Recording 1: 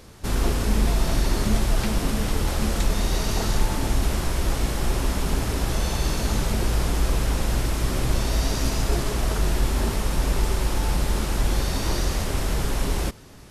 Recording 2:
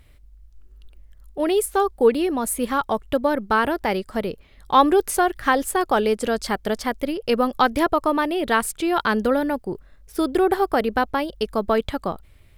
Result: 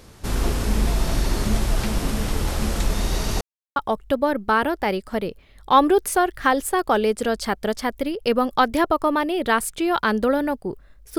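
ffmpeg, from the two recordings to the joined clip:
ffmpeg -i cue0.wav -i cue1.wav -filter_complex "[0:a]apad=whole_dur=11.18,atrim=end=11.18,asplit=2[link_01][link_02];[link_01]atrim=end=3.41,asetpts=PTS-STARTPTS,afade=type=out:start_time=3.406:duration=0.004:curve=hsin[link_03];[link_02]atrim=start=3.41:end=3.76,asetpts=PTS-STARTPTS,volume=0[link_04];[1:a]atrim=start=2.78:end=10.2,asetpts=PTS-STARTPTS,afade=type=in:duration=0.004:curve=hsin[link_05];[link_03][link_04][link_05]concat=n=3:v=0:a=1" out.wav

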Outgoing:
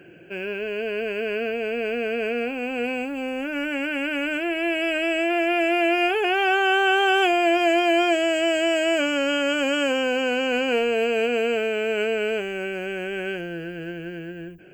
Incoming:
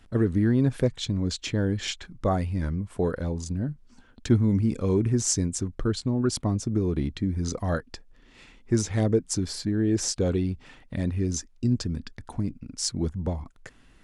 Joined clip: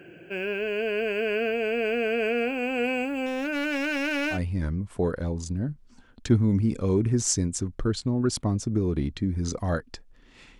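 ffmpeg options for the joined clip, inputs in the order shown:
ffmpeg -i cue0.wav -i cue1.wav -filter_complex "[0:a]asettb=1/sr,asplit=3[link_01][link_02][link_03];[link_01]atrim=end=3.264[link_04];[link_02]atrim=start=3.26:end=4.4,asetpts=PTS-STARTPTS,afade=type=in:duration=0.004:curve=qsin,afade=type=out:start_time=1.136:duration=0.004:curve=qsin,aeval=exprs='clip(val(0),-1,0.0473)':channel_layout=same[link_05];[link_03]atrim=start=4.396[link_06];[link_04][link_05]acrossfade=duration=0.004:curve1=hsin:curve2=qsin[link_07];[link_07][link_06]acrossfade=duration=0.004:curve1=qsin:curve2=hsin,apad=whole_dur=10.59,atrim=end=10.59,atrim=end=4.4,asetpts=PTS-STARTPTS[link_08];[1:a]atrim=start=2.3:end=8.59,asetpts=PTS-STARTPTS[link_09];[link_08][link_09]acrossfade=duration=0.1:curve1=tri:curve2=tri" out.wav

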